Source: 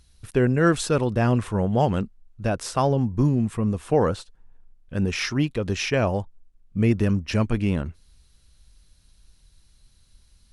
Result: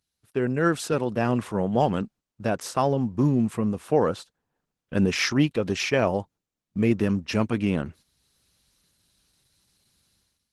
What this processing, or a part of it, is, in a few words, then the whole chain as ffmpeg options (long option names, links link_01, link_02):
video call: -filter_complex "[0:a]asettb=1/sr,asplit=3[link_01][link_02][link_03];[link_01]atrim=end=0.934[link_04];[link_02]atrim=start=0.93:end=1.75,asetpts=PTS-STARTPTS,afade=type=in:duration=0.004:curve=qsin,afade=type=out:start_time=0.816:duration=0.004:curve=qsin,highpass=85[link_05];[link_03]atrim=start=1.746[link_06];[link_04][link_05]acrossfade=duration=0.004:curve1=hsin:curve2=qsin[link_07];[link_07][link_06]acrossfade=duration=0.004:curve1=qsin:curve2=hsin,highpass=150,dynaudnorm=framelen=110:gausssize=7:maxgain=16.5dB,agate=range=-9dB:threshold=-39dB:ratio=16:detection=peak,volume=-8dB" -ar 48000 -c:a libopus -b:a 16k